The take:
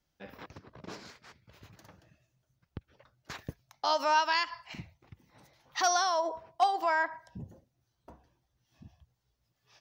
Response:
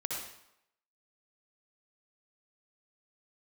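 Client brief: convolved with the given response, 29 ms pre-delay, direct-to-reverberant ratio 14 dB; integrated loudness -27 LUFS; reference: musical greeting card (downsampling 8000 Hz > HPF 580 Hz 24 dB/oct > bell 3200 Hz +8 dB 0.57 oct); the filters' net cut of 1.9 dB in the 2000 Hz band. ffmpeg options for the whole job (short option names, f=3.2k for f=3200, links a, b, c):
-filter_complex "[0:a]equalizer=f=2k:t=o:g=-4,asplit=2[a][b];[1:a]atrim=start_sample=2205,adelay=29[c];[b][c]afir=irnorm=-1:irlink=0,volume=-17dB[d];[a][d]amix=inputs=2:normalize=0,aresample=8000,aresample=44100,highpass=f=580:w=0.5412,highpass=f=580:w=1.3066,equalizer=f=3.2k:t=o:w=0.57:g=8,volume=3.5dB"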